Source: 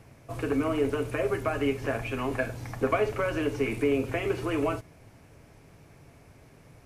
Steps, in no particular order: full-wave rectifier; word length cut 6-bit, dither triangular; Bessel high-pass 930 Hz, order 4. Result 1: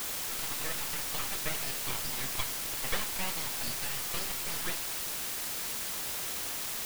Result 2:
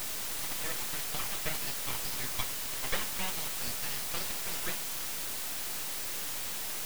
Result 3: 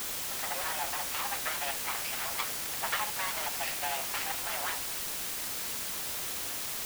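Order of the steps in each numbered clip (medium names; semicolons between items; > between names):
Bessel high-pass > full-wave rectifier > word length cut; Bessel high-pass > word length cut > full-wave rectifier; full-wave rectifier > Bessel high-pass > word length cut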